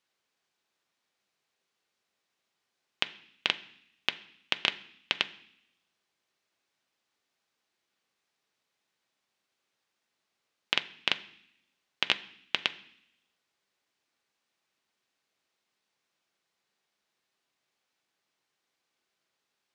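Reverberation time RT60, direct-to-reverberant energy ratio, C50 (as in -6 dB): 0.65 s, 8.0 dB, 17.0 dB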